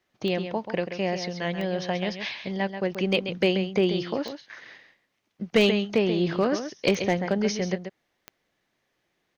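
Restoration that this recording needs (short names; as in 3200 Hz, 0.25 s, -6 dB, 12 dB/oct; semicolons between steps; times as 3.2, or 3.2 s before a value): clip repair -12.5 dBFS; de-click; inverse comb 0.134 s -9 dB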